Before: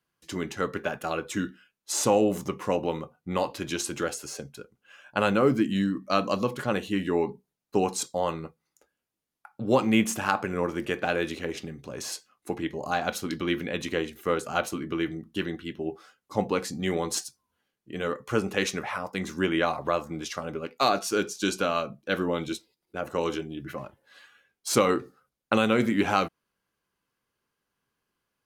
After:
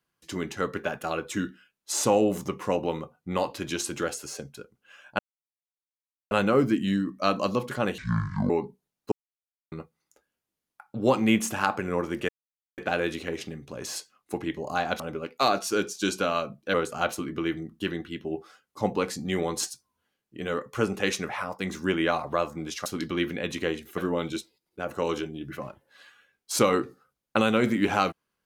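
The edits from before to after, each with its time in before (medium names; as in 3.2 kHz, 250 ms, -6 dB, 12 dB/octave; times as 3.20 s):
5.19 s: insert silence 1.12 s
6.86–7.15 s: speed 56%
7.77–8.37 s: mute
10.94 s: insert silence 0.49 s
13.16–14.28 s: swap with 20.40–22.14 s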